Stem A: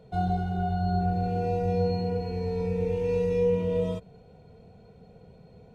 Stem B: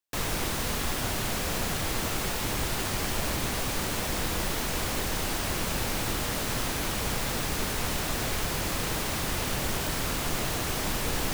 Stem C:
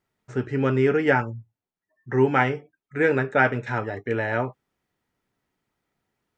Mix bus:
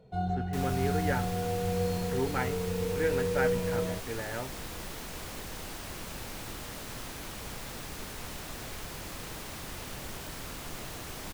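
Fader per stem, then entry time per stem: −4.5, −11.0, −12.5 decibels; 0.00, 0.40, 0.00 seconds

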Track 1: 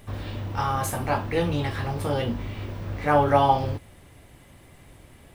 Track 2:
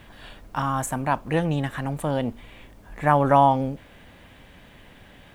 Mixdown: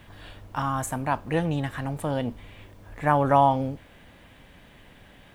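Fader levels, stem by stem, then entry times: −17.0, −2.5 decibels; 0.00, 0.00 seconds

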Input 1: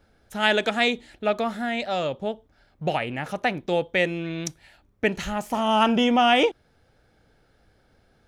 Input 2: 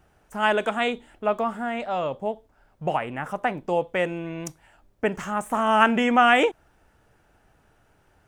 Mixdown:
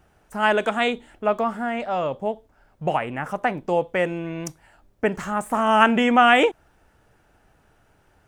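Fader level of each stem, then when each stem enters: −17.0, +1.5 decibels; 0.00, 0.00 seconds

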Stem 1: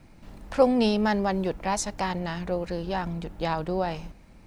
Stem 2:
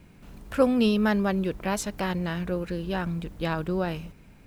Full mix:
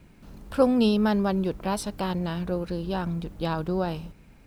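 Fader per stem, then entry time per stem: −8.5, −2.0 decibels; 0.00, 0.00 seconds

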